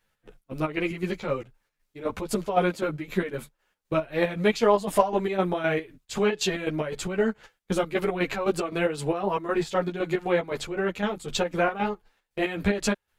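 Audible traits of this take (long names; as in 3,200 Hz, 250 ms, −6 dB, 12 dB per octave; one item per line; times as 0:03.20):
chopped level 3.9 Hz, depth 60%, duty 55%
a shimmering, thickened sound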